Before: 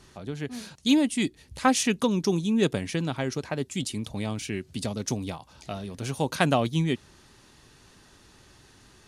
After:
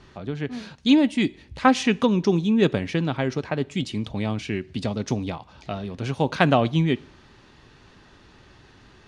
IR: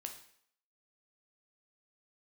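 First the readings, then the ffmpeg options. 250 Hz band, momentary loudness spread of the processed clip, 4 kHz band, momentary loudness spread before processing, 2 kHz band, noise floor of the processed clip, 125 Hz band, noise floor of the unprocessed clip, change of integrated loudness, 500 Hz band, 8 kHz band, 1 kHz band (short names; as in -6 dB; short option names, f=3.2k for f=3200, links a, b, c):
+4.5 dB, 12 LU, +1.5 dB, 13 LU, +4.0 dB, -53 dBFS, +4.5 dB, -56 dBFS, +4.0 dB, +4.5 dB, -7.5 dB, +4.5 dB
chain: -filter_complex "[0:a]lowpass=3.6k,asplit=2[a][b];[1:a]atrim=start_sample=2205[c];[b][c]afir=irnorm=-1:irlink=0,volume=-10.5dB[d];[a][d]amix=inputs=2:normalize=0,volume=3dB"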